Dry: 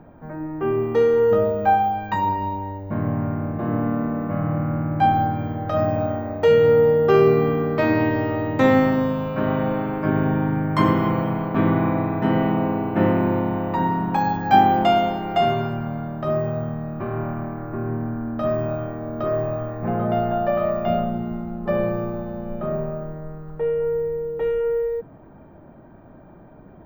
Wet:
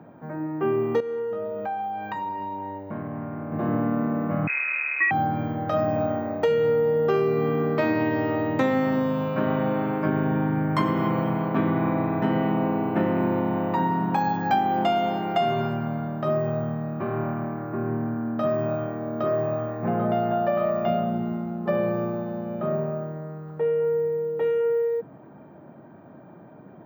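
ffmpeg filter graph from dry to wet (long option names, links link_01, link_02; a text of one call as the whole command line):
ffmpeg -i in.wav -filter_complex "[0:a]asettb=1/sr,asplit=3[link_01][link_02][link_03];[link_01]atrim=end=1.004[link_04];[link_02]atrim=start=1:end=3.52,asetpts=PTS-STARTPTS,afade=type=in:duration=0.004:curve=qsin,afade=type=out:start_time=2.516:duration=0.004:curve=qsin,bass=frequency=250:gain=-4,treble=frequency=4000:gain=-5,acompressor=threshold=-28dB:ratio=5:attack=3.2:release=140:knee=1:detection=peak[link_05];[link_03]atrim=start=3.516[link_06];[link_04][link_05]acrossfade=duration=0.004:curve1=hsin:curve2=qsin[link_07];[link_07][link_06]acrossfade=duration=0.004:curve1=qsin:curve2=hsin,asettb=1/sr,asplit=3[link_08][link_09][link_10];[link_08]atrim=end=4.474[link_11];[link_09]atrim=start=4.47:end=5.11,asetpts=PTS-STARTPTS,afade=type=in:duration=0.004:curve=qsin,afade=type=out:start_time=0.636:duration=0.004:curve=qsin,equalizer=frequency=94:width_type=o:width=0.41:gain=-14,aeval=exprs='sgn(val(0))*max(abs(val(0))-0.0178,0)':channel_layout=same,lowpass=frequency=2300:width_type=q:width=0.5098,lowpass=frequency=2300:width_type=q:width=0.6013,lowpass=frequency=2300:width_type=q:width=0.9,lowpass=frequency=2300:width_type=q:width=2.563,afreqshift=-2700[link_12];[link_10]atrim=start=5.106[link_13];[link_11][link_12]acrossfade=duration=0.004:curve1=hsin:curve2=qsin[link_14];[link_14][link_13]acrossfade=duration=0.004:curve1=qsin:curve2=hsin,highpass=frequency=120:width=0.5412,highpass=frequency=120:width=1.3066,acompressor=threshold=-19dB:ratio=6" out.wav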